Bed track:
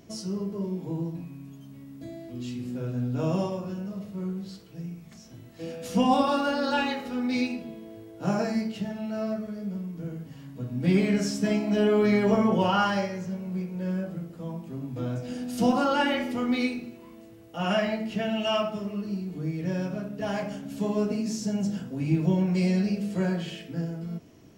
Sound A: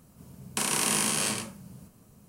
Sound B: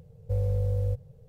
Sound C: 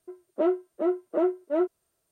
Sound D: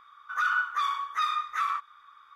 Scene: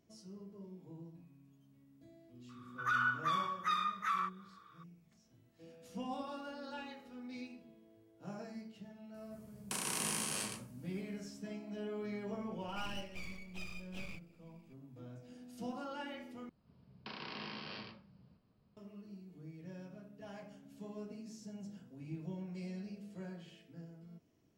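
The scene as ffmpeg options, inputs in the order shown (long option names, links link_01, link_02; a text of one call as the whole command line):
ffmpeg -i bed.wav -i cue0.wav -i cue1.wav -i cue2.wav -i cue3.wav -filter_complex "[4:a]asplit=2[link_01][link_02];[1:a]asplit=2[link_03][link_04];[0:a]volume=-20dB[link_05];[link_02]aeval=exprs='abs(val(0))':channel_layout=same[link_06];[link_04]aresample=11025,aresample=44100[link_07];[link_05]asplit=2[link_08][link_09];[link_08]atrim=end=16.494[link_10];[link_07]atrim=end=2.28,asetpts=PTS-STARTPTS,volume=-15.5dB[link_11];[link_09]atrim=start=18.766[link_12];[link_01]atrim=end=2.35,asetpts=PTS-STARTPTS,volume=-6.5dB,afade=type=in:duration=0.004:curve=hsin,afade=type=out:start_time=2.346:duration=0.004:curve=hsin,adelay=2490[link_13];[link_03]atrim=end=2.28,asetpts=PTS-STARTPTS,volume=-11dB,afade=type=in:duration=0.004:curve=hsin,afade=type=out:start_time=2.276:duration=0.004:curve=hsin,adelay=403074S[link_14];[link_06]atrim=end=2.35,asetpts=PTS-STARTPTS,volume=-16dB,afade=type=in:duration=0.004:curve=hsin,afade=type=out:start_time=2.346:duration=0.004:curve=hsin,adelay=12390[link_15];[link_10][link_11]acrossfade=duration=0.004:curve1=hsin:curve2=hsin[link_16];[link_16][link_12]acrossfade=duration=0.004:curve1=hsin:curve2=hsin[link_17];[link_17][link_13][link_14][link_15]amix=inputs=4:normalize=0" out.wav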